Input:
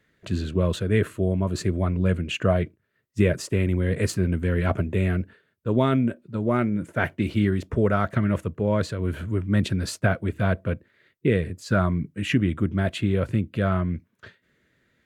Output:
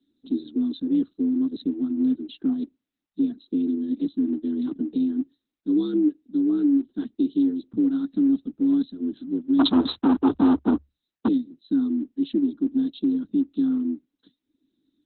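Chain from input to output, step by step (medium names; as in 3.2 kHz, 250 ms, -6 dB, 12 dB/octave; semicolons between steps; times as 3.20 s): reverb removal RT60 0.71 s; FFT filter 120 Hz 0 dB, 210 Hz +11 dB, 320 Hz -5 dB, 610 Hz -24 dB, 1.3 kHz -21 dB, 2.6 kHz -14 dB, 3.9 kHz +7 dB, 6 kHz -10 dB, 9.7 kHz +6 dB; peak limiter -12.5 dBFS, peak gain reduction 8.5 dB; 9.59–11.28 s: waveshaping leveller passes 5; frequency shift +70 Hz; static phaser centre 580 Hz, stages 6; Opus 8 kbps 48 kHz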